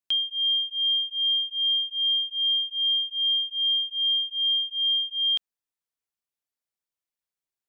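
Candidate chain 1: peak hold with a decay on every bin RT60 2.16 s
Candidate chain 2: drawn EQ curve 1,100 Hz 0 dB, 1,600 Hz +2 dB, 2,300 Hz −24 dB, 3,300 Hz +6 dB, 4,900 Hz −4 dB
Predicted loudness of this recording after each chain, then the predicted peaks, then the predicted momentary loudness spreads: −22.0, −19.0 LKFS; −16.5, −15.5 dBFS; 2, 0 LU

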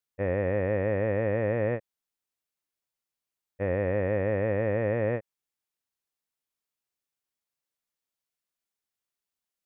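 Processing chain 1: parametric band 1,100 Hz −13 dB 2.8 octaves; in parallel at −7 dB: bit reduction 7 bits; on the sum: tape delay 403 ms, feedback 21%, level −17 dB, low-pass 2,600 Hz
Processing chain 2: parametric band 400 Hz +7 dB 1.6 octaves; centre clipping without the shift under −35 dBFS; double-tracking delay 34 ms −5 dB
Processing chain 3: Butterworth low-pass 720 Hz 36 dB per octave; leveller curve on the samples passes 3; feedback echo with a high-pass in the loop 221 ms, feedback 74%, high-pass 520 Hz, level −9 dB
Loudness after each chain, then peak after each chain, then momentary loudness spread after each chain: −30.5, −22.5, −23.0 LKFS; −19.5, −8.5, −14.5 dBFS; 7, 4, 16 LU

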